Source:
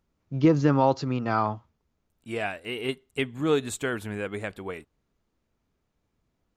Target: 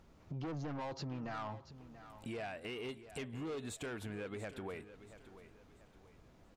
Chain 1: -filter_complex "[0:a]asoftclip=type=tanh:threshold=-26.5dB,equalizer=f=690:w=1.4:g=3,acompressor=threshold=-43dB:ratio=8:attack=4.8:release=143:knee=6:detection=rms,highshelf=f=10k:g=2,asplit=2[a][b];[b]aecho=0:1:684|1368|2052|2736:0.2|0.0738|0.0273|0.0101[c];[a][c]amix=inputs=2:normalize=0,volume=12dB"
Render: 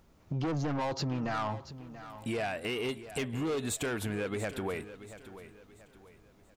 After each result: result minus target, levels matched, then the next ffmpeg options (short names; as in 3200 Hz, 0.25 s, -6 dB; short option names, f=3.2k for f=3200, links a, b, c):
compressor: peak gain reduction -9 dB; 8000 Hz band +3.5 dB
-filter_complex "[0:a]asoftclip=type=tanh:threshold=-26.5dB,equalizer=f=690:w=1.4:g=3,acompressor=threshold=-53.5dB:ratio=8:attack=4.8:release=143:knee=6:detection=rms,highshelf=f=10k:g=2,asplit=2[a][b];[b]aecho=0:1:684|1368|2052|2736:0.2|0.0738|0.0273|0.0101[c];[a][c]amix=inputs=2:normalize=0,volume=12dB"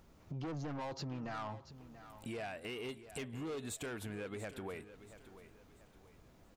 8000 Hz band +3.5 dB
-filter_complex "[0:a]asoftclip=type=tanh:threshold=-26.5dB,equalizer=f=690:w=1.4:g=3,acompressor=threshold=-53.5dB:ratio=8:attack=4.8:release=143:knee=6:detection=rms,highshelf=f=10k:g=-9.5,asplit=2[a][b];[b]aecho=0:1:684|1368|2052|2736:0.2|0.0738|0.0273|0.0101[c];[a][c]amix=inputs=2:normalize=0,volume=12dB"